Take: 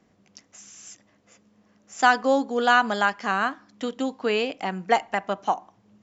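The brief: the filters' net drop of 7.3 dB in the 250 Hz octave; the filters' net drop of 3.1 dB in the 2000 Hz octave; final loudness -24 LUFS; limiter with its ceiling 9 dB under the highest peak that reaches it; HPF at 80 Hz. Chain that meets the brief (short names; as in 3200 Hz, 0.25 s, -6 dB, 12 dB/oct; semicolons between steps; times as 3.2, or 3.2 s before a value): HPF 80 Hz; bell 250 Hz -8 dB; bell 2000 Hz -4.5 dB; gain +5 dB; limiter -10.5 dBFS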